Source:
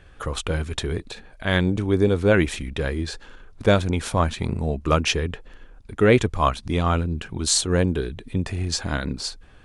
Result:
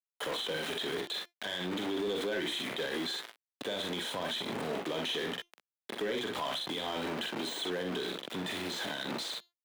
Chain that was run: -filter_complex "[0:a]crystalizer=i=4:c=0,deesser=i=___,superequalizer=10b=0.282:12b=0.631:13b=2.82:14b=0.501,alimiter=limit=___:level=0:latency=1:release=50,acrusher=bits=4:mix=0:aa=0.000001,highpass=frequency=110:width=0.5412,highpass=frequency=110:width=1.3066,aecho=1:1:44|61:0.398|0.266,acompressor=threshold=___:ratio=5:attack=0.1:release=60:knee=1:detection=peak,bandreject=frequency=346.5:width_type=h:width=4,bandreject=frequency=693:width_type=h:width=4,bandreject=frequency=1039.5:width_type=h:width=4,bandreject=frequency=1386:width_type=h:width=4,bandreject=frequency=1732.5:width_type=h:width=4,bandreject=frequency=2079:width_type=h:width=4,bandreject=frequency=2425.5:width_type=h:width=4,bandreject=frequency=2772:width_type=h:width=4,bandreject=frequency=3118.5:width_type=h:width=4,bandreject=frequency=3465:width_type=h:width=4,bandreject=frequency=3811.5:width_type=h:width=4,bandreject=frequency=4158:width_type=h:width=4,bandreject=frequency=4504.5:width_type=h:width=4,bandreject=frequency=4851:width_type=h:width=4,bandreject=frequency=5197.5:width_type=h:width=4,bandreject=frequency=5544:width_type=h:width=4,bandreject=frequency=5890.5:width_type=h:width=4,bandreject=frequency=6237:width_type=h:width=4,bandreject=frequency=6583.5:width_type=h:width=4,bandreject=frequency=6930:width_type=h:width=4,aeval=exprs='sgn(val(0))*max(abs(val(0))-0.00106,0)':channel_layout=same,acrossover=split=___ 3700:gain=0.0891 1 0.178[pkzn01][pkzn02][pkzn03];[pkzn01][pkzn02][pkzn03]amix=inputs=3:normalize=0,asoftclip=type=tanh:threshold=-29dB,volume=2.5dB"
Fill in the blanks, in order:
0.4, -9dB, -26dB, 230